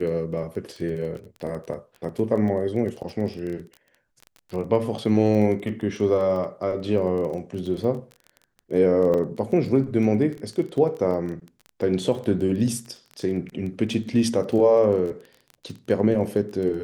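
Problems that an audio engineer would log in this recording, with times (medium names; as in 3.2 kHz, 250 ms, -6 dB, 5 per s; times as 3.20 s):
crackle 18 per s -31 dBFS
9.14 s: dropout 3.9 ms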